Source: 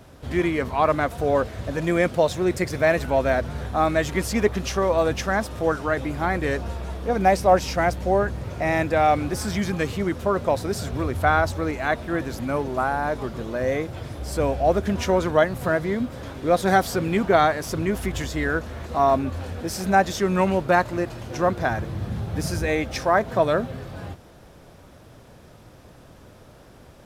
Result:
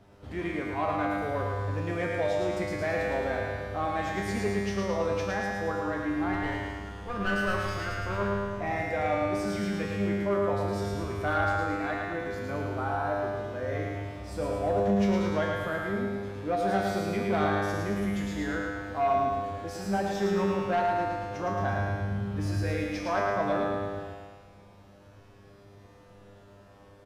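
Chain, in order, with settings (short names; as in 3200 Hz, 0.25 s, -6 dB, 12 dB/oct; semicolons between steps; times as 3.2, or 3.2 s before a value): 6.33–8.51 minimum comb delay 0.62 ms; high shelf 6100 Hz -11 dB; resonator 100 Hz, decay 0.87 s, harmonics all, mix 90%; soft clip -24.5 dBFS, distortion -19 dB; feedback echo 0.11 s, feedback 52%, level -5.5 dB; gain +5 dB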